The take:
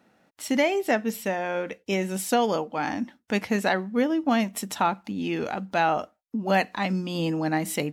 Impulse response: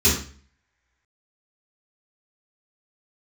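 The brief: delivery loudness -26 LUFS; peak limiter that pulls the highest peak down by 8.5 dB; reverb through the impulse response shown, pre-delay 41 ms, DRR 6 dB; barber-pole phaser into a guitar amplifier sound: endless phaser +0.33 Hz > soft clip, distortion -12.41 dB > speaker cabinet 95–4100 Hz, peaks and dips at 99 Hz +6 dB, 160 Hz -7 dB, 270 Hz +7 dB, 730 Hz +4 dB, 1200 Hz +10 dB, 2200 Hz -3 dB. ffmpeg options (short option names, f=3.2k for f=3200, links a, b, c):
-filter_complex "[0:a]alimiter=limit=-19.5dB:level=0:latency=1,asplit=2[a][b];[1:a]atrim=start_sample=2205,adelay=41[c];[b][c]afir=irnorm=-1:irlink=0,volume=-23.5dB[d];[a][d]amix=inputs=2:normalize=0,asplit=2[e][f];[f]afreqshift=0.33[g];[e][g]amix=inputs=2:normalize=1,asoftclip=threshold=-26dB,highpass=95,equalizer=f=99:t=q:w=4:g=6,equalizer=f=160:t=q:w=4:g=-7,equalizer=f=270:t=q:w=4:g=7,equalizer=f=730:t=q:w=4:g=4,equalizer=f=1.2k:t=q:w=4:g=10,equalizer=f=2.2k:t=q:w=4:g=-3,lowpass=f=4.1k:w=0.5412,lowpass=f=4.1k:w=1.3066,volume=5.5dB"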